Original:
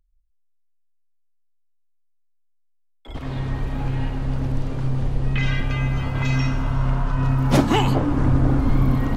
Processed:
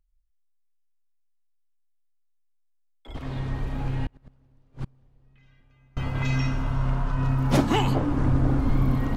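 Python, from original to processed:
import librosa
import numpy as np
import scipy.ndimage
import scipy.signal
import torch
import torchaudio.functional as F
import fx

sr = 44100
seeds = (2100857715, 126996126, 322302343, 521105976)

y = fx.gate_flip(x, sr, shuts_db=-16.0, range_db=-33, at=(4.05, 5.97))
y = y * librosa.db_to_amplitude(-4.0)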